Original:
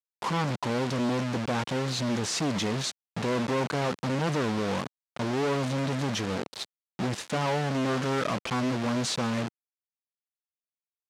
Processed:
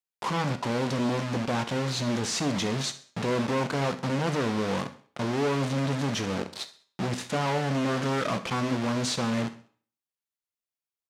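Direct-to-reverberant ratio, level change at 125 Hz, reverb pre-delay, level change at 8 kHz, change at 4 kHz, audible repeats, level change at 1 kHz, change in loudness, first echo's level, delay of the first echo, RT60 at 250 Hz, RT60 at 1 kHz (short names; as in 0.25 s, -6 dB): 9.5 dB, +1.0 dB, 13 ms, +0.5 dB, +0.5 dB, 3, +0.5 dB, +0.5 dB, -17.5 dB, 65 ms, 0.50 s, 0.50 s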